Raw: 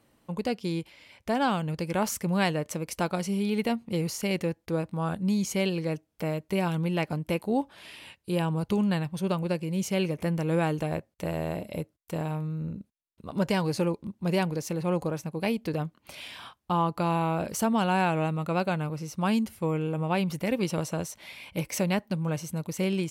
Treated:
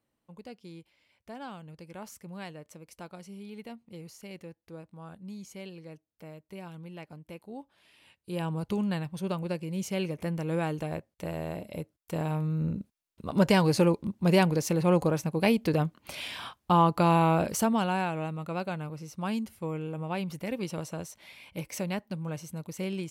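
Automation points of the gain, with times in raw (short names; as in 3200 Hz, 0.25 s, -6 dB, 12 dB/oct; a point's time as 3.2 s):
7.91 s -16 dB
8.46 s -4 dB
11.75 s -4 dB
12.64 s +4 dB
17.35 s +4 dB
18.11 s -6 dB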